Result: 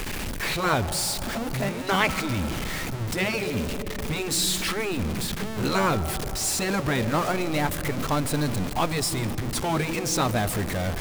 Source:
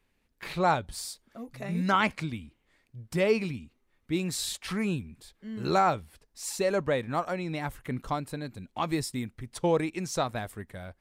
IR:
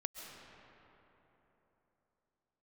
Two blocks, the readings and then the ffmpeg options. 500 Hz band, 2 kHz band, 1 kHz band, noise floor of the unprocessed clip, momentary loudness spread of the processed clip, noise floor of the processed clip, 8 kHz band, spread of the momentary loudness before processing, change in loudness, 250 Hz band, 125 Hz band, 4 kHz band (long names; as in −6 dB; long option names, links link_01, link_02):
+1.5 dB, +7.0 dB, +2.5 dB, −73 dBFS, 6 LU, −31 dBFS, +11.0 dB, 16 LU, +4.5 dB, +4.5 dB, +7.5 dB, +9.5 dB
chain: -filter_complex "[0:a]aeval=exprs='val(0)+0.5*0.0316*sgn(val(0))':channel_layout=same,asplit=2[link_01][link_02];[1:a]atrim=start_sample=2205,lowshelf=frequency=470:gain=9[link_03];[link_02][link_03]afir=irnorm=-1:irlink=0,volume=-11.5dB[link_04];[link_01][link_04]amix=inputs=2:normalize=0,afftfilt=real='re*lt(hypot(re,im),0.447)':imag='im*lt(hypot(re,im),0.447)':win_size=1024:overlap=0.75,volume=3dB"